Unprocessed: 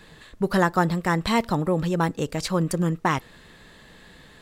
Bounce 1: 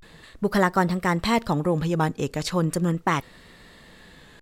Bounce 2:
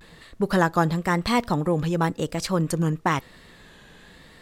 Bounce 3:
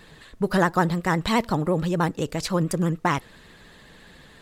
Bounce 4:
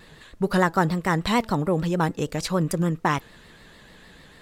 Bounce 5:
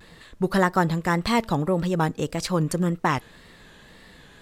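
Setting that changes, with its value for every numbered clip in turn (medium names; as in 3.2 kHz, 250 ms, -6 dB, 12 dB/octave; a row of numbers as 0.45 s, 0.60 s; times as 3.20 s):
vibrato, rate: 0.36 Hz, 0.97 Hz, 14 Hz, 6.7 Hz, 1.8 Hz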